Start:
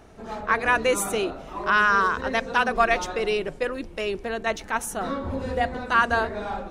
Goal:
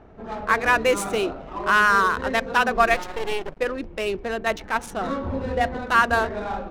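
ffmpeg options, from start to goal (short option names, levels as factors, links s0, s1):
-filter_complex "[0:a]adynamicsmooth=sensitivity=8:basefreq=1800,asettb=1/sr,asplit=3[s0][s1][s2];[s0]atrim=end=2.944[s3];[s1]atrim=start=2.94:end=3.6,asetpts=PTS-STARTPTS,afade=t=in:d=0.004:c=qsin,afade=t=out:st=0.656:d=0.004:c=qsin,aeval=exprs='max(val(0),0)':c=same[s4];[s2]atrim=start=3.596[s5];[s3][s4]acrossfade=d=0.004:c1=hsin:c2=qsin[s6];[s6][s5]acrossfade=d=0.004:c1=qsin:c2=hsin,volume=1.26"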